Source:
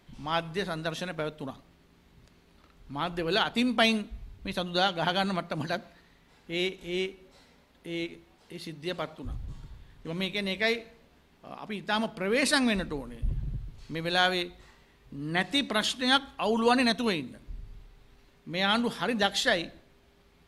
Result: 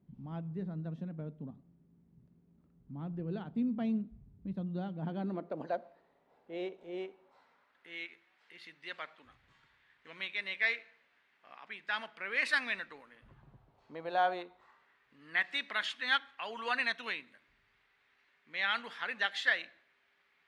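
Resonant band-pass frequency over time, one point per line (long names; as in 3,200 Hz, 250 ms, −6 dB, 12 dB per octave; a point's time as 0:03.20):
resonant band-pass, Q 2
0:04.98 170 Hz
0:05.72 620 Hz
0:06.92 620 Hz
0:07.99 1,900 Hz
0:13.03 1,900 Hz
0:13.67 750 Hz
0:14.37 750 Hz
0:15.16 1,900 Hz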